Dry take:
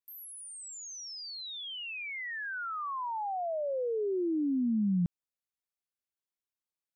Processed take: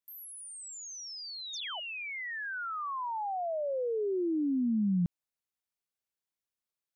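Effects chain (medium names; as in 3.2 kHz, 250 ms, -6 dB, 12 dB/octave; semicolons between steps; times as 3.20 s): painted sound fall, 1.53–1.80 s, 580–7200 Hz -42 dBFS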